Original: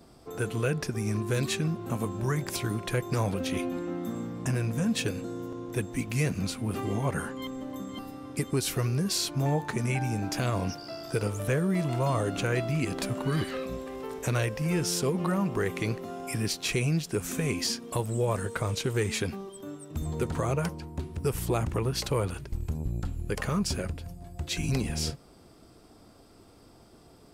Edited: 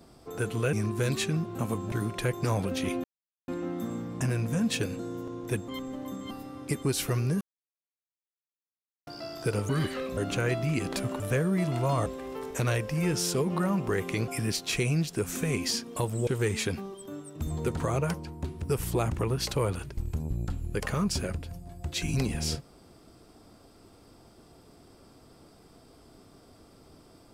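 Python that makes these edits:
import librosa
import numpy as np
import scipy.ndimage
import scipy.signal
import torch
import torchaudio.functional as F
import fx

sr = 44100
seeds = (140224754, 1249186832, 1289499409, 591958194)

y = fx.edit(x, sr, fx.cut(start_s=0.73, length_s=0.31),
    fx.cut(start_s=2.23, length_s=0.38),
    fx.insert_silence(at_s=3.73, length_s=0.44),
    fx.cut(start_s=5.93, length_s=1.43),
    fx.silence(start_s=9.09, length_s=1.66),
    fx.swap(start_s=11.37, length_s=0.86, other_s=13.26, other_length_s=0.48),
    fx.cut(start_s=15.96, length_s=0.28),
    fx.cut(start_s=18.23, length_s=0.59), tone=tone)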